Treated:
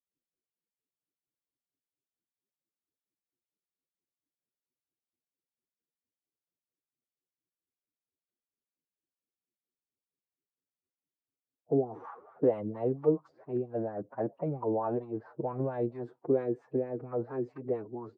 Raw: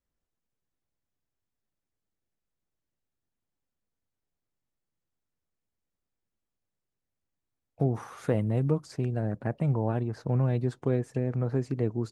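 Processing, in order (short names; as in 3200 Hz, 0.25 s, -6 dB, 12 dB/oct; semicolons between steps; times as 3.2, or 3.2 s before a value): low-pass opened by the level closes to 310 Hz, open at -22.5 dBFS; time stretch by phase-locked vocoder 1.5×; wah 4.4 Hz 330–1100 Hz, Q 3; gain +6.5 dB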